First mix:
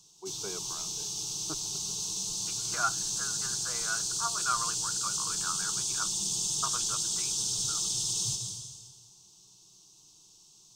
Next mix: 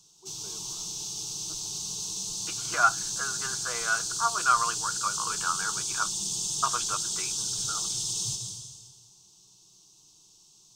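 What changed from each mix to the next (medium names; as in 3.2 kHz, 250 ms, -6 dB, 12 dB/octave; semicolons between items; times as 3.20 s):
first voice -11.5 dB; second voice +8.0 dB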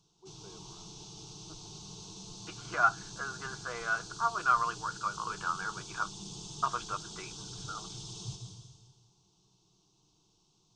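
master: add tape spacing loss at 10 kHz 27 dB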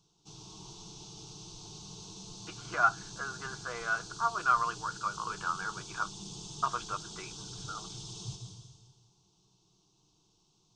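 first voice: muted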